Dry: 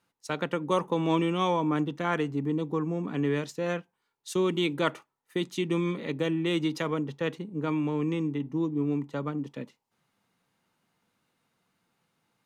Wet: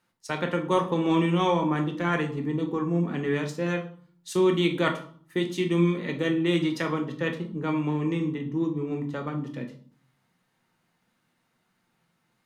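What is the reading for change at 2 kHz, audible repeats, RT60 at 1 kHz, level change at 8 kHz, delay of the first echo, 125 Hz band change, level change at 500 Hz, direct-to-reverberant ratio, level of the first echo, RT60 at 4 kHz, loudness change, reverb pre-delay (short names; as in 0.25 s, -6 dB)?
+4.0 dB, none, 0.50 s, +1.0 dB, none, +3.5 dB, +2.5 dB, 3.5 dB, none, 0.40 s, +2.5 dB, 5 ms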